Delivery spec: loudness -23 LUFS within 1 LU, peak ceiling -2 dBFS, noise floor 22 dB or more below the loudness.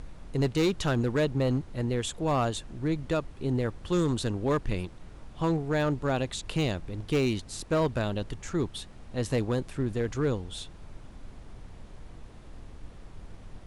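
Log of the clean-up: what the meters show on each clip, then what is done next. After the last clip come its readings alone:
clipped 1.5%; flat tops at -20.0 dBFS; noise floor -48 dBFS; noise floor target -52 dBFS; loudness -29.5 LUFS; peak -20.0 dBFS; loudness target -23.0 LUFS
-> clip repair -20 dBFS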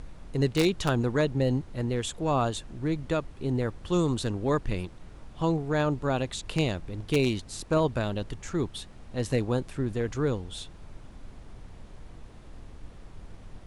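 clipped 0.0%; noise floor -48 dBFS; noise floor target -51 dBFS
-> noise print and reduce 6 dB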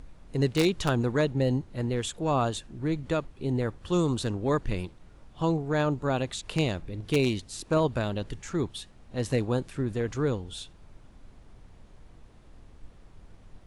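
noise floor -53 dBFS; loudness -29.0 LUFS; peak -11.0 dBFS; loudness target -23.0 LUFS
-> gain +6 dB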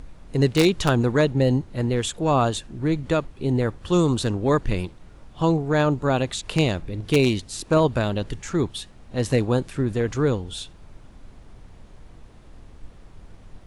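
loudness -23.0 LUFS; peak -5.0 dBFS; noise floor -47 dBFS

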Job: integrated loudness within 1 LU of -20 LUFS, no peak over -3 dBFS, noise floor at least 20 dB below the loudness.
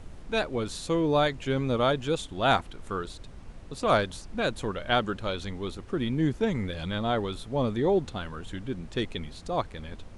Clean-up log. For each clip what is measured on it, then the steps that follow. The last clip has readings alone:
noise floor -46 dBFS; noise floor target -49 dBFS; loudness -29.0 LUFS; peak -8.5 dBFS; loudness target -20.0 LUFS
-> noise print and reduce 6 dB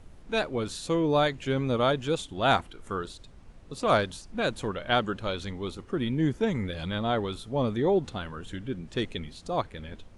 noise floor -50 dBFS; loudness -29.0 LUFS; peak -9.0 dBFS; loudness target -20.0 LUFS
-> gain +9 dB; limiter -3 dBFS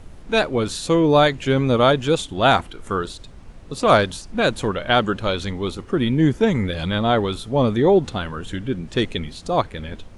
loudness -20.0 LUFS; peak -3.0 dBFS; noise floor -41 dBFS

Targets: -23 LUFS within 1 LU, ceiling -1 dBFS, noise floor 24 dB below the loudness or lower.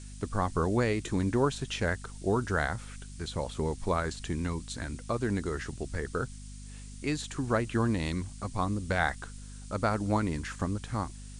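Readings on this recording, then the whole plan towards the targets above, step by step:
hum 50 Hz; harmonics up to 250 Hz; hum level -42 dBFS; noise floor -45 dBFS; noise floor target -56 dBFS; loudness -32.0 LUFS; peak -12.0 dBFS; loudness target -23.0 LUFS
-> de-hum 50 Hz, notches 5; denoiser 11 dB, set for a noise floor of -45 dBFS; gain +9 dB

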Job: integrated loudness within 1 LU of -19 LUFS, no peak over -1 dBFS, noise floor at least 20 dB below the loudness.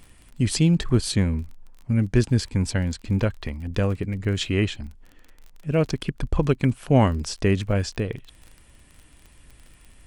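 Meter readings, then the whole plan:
ticks 30/s; loudness -24.0 LUFS; peak -5.0 dBFS; loudness target -19.0 LUFS
-> de-click; gain +5 dB; limiter -1 dBFS

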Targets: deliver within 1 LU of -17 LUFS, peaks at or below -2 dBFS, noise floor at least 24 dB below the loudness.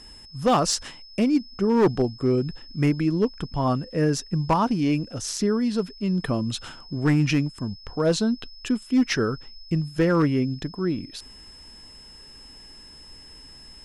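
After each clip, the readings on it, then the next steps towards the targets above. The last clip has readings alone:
clipped 0.6%; flat tops at -13.5 dBFS; steady tone 5200 Hz; tone level -45 dBFS; loudness -24.5 LUFS; peak -13.5 dBFS; loudness target -17.0 LUFS
-> clip repair -13.5 dBFS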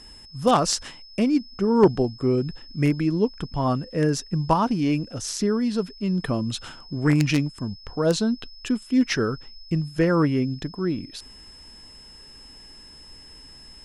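clipped 0.0%; steady tone 5200 Hz; tone level -45 dBFS
-> notch 5200 Hz, Q 30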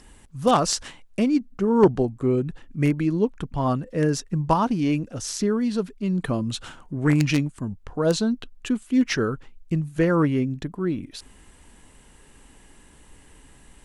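steady tone none; loudness -24.0 LUFS; peak -4.5 dBFS; loudness target -17.0 LUFS
-> gain +7 dB; limiter -2 dBFS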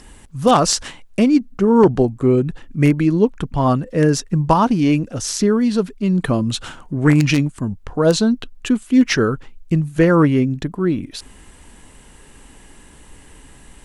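loudness -17.5 LUFS; peak -2.0 dBFS; noise floor -45 dBFS

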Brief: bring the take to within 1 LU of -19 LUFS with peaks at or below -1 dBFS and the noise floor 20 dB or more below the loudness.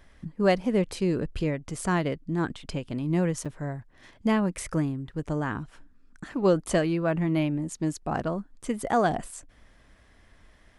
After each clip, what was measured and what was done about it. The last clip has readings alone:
dropouts 1; longest dropout 6.4 ms; loudness -28.0 LUFS; peak -9.0 dBFS; loudness target -19.0 LUFS
-> interpolate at 3.45, 6.4 ms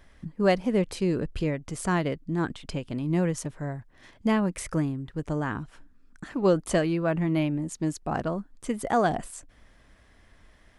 dropouts 0; loudness -28.0 LUFS; peak -9.0 dBFS; loudness target -19.0 LUFS
-> gain +9 dB; limiter -1 dBFS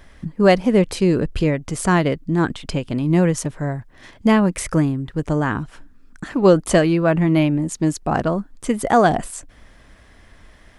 loudness -19.0 LUFS; peak -1.0 dBFS; noise floor -49 dBFS

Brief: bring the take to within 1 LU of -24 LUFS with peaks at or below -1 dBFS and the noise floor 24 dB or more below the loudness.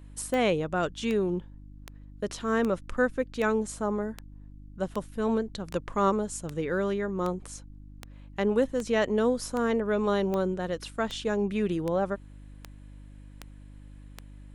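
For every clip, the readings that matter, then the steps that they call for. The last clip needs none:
clicks 19; hum 50 Hz; harmonics up to 300 Hz; hum level -45 dBFS; loudness -29.0 LUFS; peak -12.5 dBFS; loudness target -24.0 LUFS
-> de-click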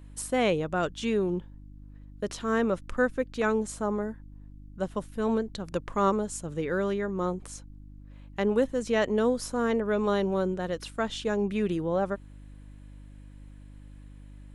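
clicks 0; hum 50 Hz; harmonics up to 300 Hz; hum level -45 dBFS
-> de-hum 50 Hz, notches 6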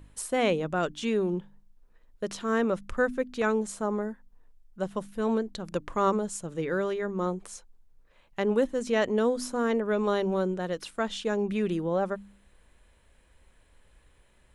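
hum none; loudness -29.0 LUFS; peak -12.5 dBFS; loudness target -24.0 LUFS
-> gain +5 dB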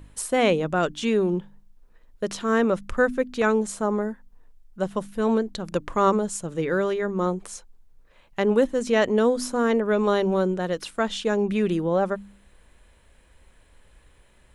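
loudness -24.0 LUFS; peak -7.5 dBFS; noise floor -57 dBFS

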